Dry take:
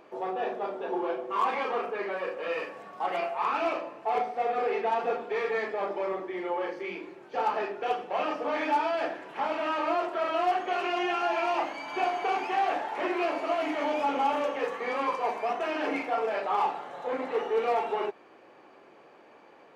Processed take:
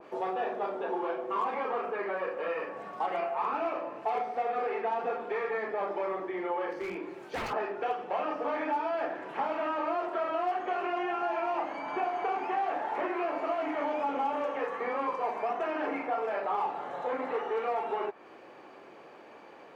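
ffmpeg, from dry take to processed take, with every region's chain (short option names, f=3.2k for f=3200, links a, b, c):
-filter_complex "[0:a]asettb=1/sr,asplit=3[a][b][c];[a]atrim=end=6.704[d];[b]atrim=start=6.7:end=7.53,asetpts=PTS-STARTPTS,afade=t=in:d=0.004:c=qsin,afade=t=out:st=0.826:d=0.004:c=qsin,aeval=exprs='0.0299*(abs(mod(val(0)/0.0299+3,4)-2)-1)':c=same,highshelf=f=5k:g=7.5[e];[c]atrim=start=7.526[f];[d][e]acrossfade=d=0.004:c1=hsin:c2=qsin[g];[g][f]acrossfade=d=0.004:c1=qsin:c2=hsin,acrossover=split=810|2100[h][i][j];[h]acompressor=threshold=-37dB:ratio=4[k];[i]acompressor=threshold=-38dB:ratio=4[l];[j]acompressor=threshold=-53dB:ratio=4[m];[k][l][m]amix=inputs=3:normalize=0,adynamicequalizer=threshold=0.00251:dfrequency=2300:dqfactor=0.7:tfrequency=2300:tqfactor=0.7:attack=5:release=100:ratio=0.375:range=3.5:mode=cutabove:tftype=highshelf,volume=3.5dB"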